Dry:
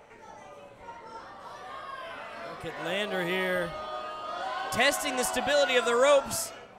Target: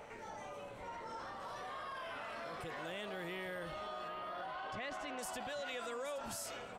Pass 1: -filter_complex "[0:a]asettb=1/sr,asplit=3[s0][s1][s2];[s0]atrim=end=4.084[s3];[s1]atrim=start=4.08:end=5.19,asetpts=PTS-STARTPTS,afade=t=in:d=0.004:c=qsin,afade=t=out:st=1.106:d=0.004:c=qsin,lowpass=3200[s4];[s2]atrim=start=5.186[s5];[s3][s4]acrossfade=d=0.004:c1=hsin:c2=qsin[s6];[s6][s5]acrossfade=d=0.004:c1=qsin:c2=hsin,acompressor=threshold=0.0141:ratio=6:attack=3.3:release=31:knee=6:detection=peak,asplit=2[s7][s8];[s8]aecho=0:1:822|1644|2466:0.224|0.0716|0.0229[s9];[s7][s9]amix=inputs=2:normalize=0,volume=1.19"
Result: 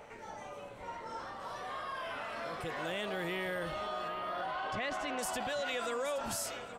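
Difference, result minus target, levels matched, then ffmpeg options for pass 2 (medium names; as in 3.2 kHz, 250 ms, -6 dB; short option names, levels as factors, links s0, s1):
compression: peak gain reduction -6.5 dB
-filter_complex "[0:a]asettb=1/sr,asplit=3[s0][s1][s2];[s0]atrim=end=4.084[s3];[s1]atrim=start=4.08:end=5.19,asetpts=PTS-STARTPTS,afade=t=in:d=0.004:c=qsin,afade=t=out:st=1.106:d=0.004:c=qsin,lowpass=3200[s4];[s2]atrim=start=5.186[s5];[s3][s4]acrossfade=d=0.004:c1=hsin:c2=qsin[s6];[s6][s5]acrossfade=d=0.004:c1=qsin:c2=hsin,acompressor=threshold=0.00562:ratio=6:attack=3.3:release=31:knee=6:detection=peak,asplit=2[s7][s8];[s8]aecho=0:1:822|1644|2466:0.224|0.0716|0.0229[s9];[s7][s9]amix=inputs=2:normalize=0,volume=1.19"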